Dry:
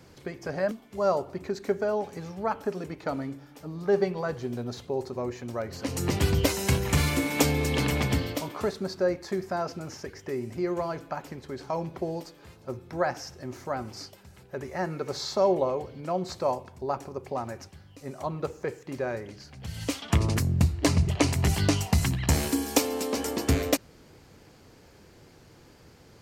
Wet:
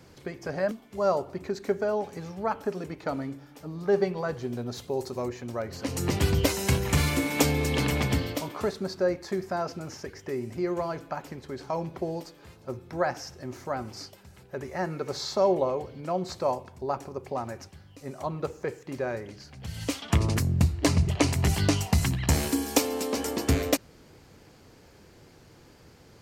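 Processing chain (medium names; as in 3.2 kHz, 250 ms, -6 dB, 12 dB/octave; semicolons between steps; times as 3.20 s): 4.74–5.27 s: treble shelf 6.9 kHz -> 3.4 kHz +11.5 dB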